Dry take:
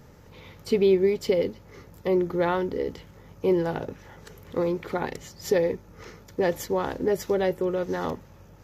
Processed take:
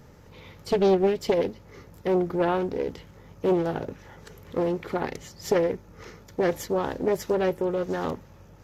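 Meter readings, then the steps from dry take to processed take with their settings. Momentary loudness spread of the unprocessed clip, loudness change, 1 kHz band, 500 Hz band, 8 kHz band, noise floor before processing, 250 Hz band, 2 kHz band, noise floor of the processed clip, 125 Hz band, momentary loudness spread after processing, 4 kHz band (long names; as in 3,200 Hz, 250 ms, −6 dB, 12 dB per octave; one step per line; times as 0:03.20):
15 LU, 0.0 dB, +1.5 dB, −0.5 dB, −0.5 dB, −51 dBFS, 0.0 dB, −1.0 dB, −51 dBFS, +0.5 dB, 16 LU, −0.5 dB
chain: highs frequency-modulated by the lows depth 0.47 ms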